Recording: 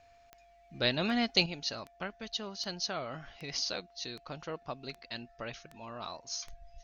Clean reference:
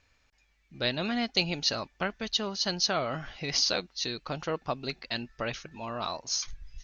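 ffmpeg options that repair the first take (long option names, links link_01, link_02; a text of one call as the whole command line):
ffmpeg -i in.wav -af "adeclick=threshold=4,bandreject=frequency=690:width=30,asetnsamples=nb_out_samples=441:pad=0,asendcmd='1.46 volume volume 8dB',volume=0dB" out.wav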